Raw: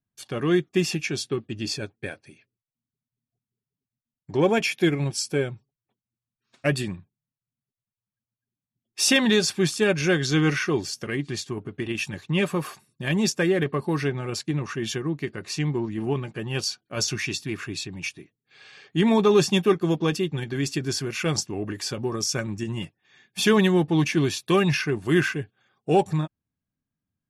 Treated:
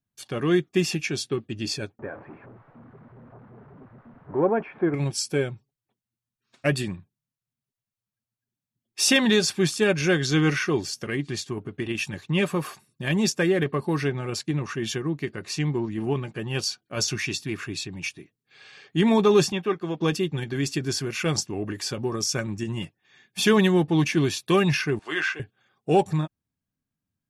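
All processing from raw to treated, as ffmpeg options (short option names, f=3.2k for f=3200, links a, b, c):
-filter_complex "[0:a]asettb=1/sr,asplit=3[a][b][c];[a]atrim=end=1.994[d];[b]atrim=start=1.99:end=4.94,asetpts=PTS-STARTPTS,afade=t=in:d=0.004:c=qsin,afade=t=out:st=2.946:d=0.004:c=qsin,aeval=exprs='val(0)+0.5*0.0211*sgn(val(0))':c=same,lowpass=f=1.4k:w=0.5412,lowpass=f=1.4k:w=1.3066,lowshelf=f=170:g=-12[e];[c]atrim=start=4.936[f];[d][e]acrossfade=d=0.004:c1=hsin:c2=qsin[g];[g][f]acrossfade=d=0.004:c1=qsin:c2=hsin,asettb=1/sr,asplit=3[h][i][j];[h]atrim=end=19.524[k];[i]atrim=start=19.52:end=20.01,asetpts=PTS-STARTPTS,afade=t=in:d=0.004:c=qsin,afade=t=out:st=0.486:d=0.004:c=qsin,acrossover=split=3300[l][m];[m]acompressor=threshold=-47dB:ratio=4:attack=1:release=60[n];[l][n]amix=inputs=2:normalize=0,highpass=f=930:p=1,aemphasis=mode=reproduction:type=bsi[o];[j]atrim=start=20.006[p];[k][o]acrossfade=d=0.004:c1=hsin:c2=qsin[q];[q][p]acrossfade=d=0.004:c1=qsin:c2=hsin,asettb=1/sr,asplit=3[r][s][t];[r]atrim=end=24.994[u];[s]atrim=start=24.99:end=25.4,asetpts=PTS-STARTPTS,afade=t=in:d=0.004:c=qsin,afade=t=out:st=0.406:d=0.004:c=qsin,highpass=690,lowpass=5.2k,asplit=2[v][w];[w]adelay=13,volume=-6dB[x];[v][x]amix=inputs=2:normalize=0,atrim=end_sample=18081[y];[t]atrim=start=25.396[z];[u][y]acrossfade=d=0.004:c1=hsin:c2=qsin[aa];[aa][z]acrossfade=d=0.004:c1=qsin:c2=hsin"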